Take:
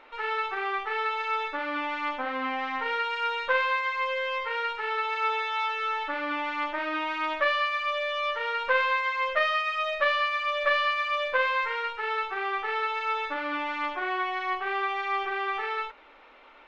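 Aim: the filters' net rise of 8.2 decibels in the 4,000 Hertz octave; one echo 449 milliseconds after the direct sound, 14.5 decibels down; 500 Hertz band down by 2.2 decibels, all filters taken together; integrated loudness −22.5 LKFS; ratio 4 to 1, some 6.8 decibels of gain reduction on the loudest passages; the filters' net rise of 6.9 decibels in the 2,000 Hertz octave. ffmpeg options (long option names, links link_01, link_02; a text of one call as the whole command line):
ffmpeg -i in.wav -af "equalizer=frequency=500:width_type=o:gain=-3,equalizer=frequency=2000:width_type=o:gain=6.5,equalizer=frequency=4000:width_type=o:gain=8.5,acompressor=threshold=-23dB:ratio=4,aecho=1:1:449:0.188,volume=3dB" out.wav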